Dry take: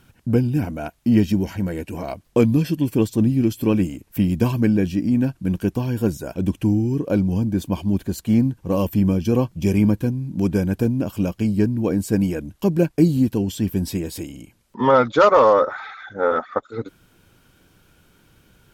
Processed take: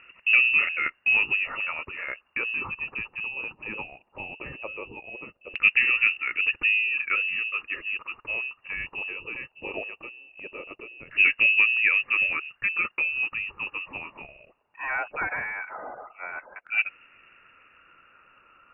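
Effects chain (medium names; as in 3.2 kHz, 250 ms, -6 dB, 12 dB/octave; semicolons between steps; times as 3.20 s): frequency inversion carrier 2.8 kHz; peak limiter -9.5 dBFS, peak gain reduction 7 dB; LFO low-pass saw down 0.18 Hz 590–2100 Hz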